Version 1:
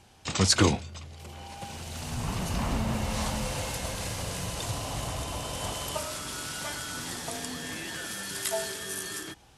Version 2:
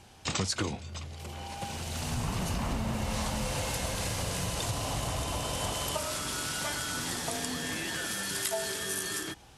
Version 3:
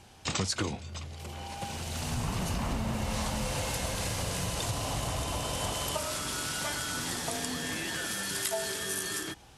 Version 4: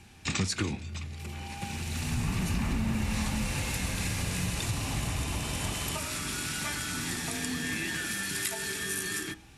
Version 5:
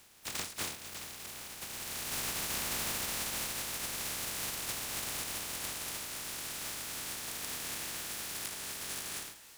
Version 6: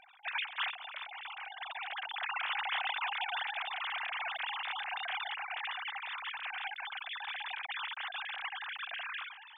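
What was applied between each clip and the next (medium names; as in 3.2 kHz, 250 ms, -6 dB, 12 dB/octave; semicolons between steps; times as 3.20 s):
compression 12:1, threshold -30 dBFS, peak gain reduction 15 dB; trim +2.5 dB
no audible change
reverberation RT60 0.45 s, pre-delay 3 ms, DRR 13.5 dB
spectral contrast reduction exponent 0.16; thinning echo 798 ms, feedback 76%, level -19.5 dB; endings held to a fixed fall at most 100 dB/s; trim -6.5 dB
formants replaced by sine waves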